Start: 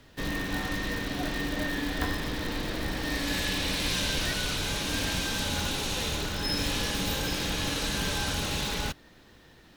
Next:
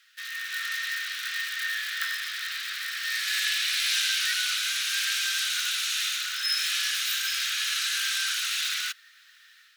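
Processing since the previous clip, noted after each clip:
automatic gain control gain up to 5 dB
Butterworth high-pass 1,300 Hz 72 dB per octave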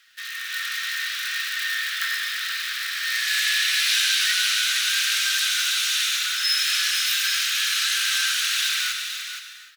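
surface crackle 43 per second −55 dBFS
single-tap delay 473 ms −8 dB
reverb whose tail is shaped and stops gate 340 ms flat, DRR 5.5 dB
level +3.5 dB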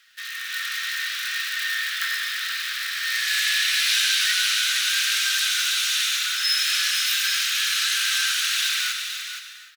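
far-end echo of a speakerphone 170 ms, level −19 dB

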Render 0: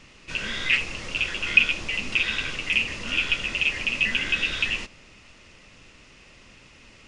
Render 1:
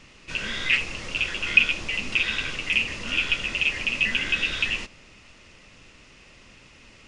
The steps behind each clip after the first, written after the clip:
no processing that can be heard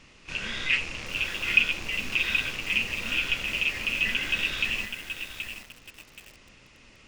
loose part that buzzes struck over −44 dBFS, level −23 dBFS
echo ahead of the sound 31 ms −14 dB
feedback echo at a low word length 776 ms, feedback 35%, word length 6 bits, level −7 dB
level −3.5 dB

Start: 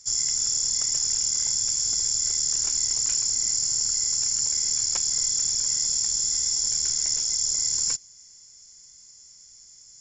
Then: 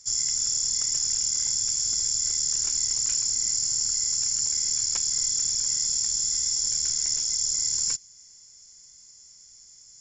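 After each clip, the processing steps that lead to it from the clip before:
dynamic equaliser 640 Hz, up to −5 dB, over −57 dBFS, Q 1
level −1 dB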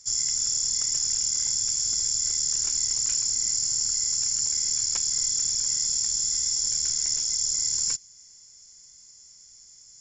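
no processing that can be heard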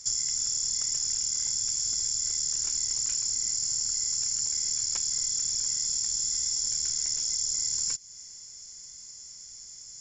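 downward compressor 4 to 1, threshold −33 dBFS, peak gain reduction 9.5 dB
level +5.5 dB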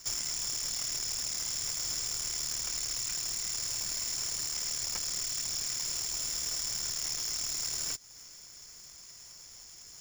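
running median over 5 samples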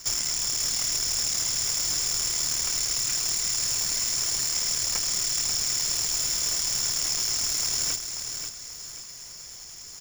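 repeating echo 536 ms, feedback 36%, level −7 dB
level +7 dB

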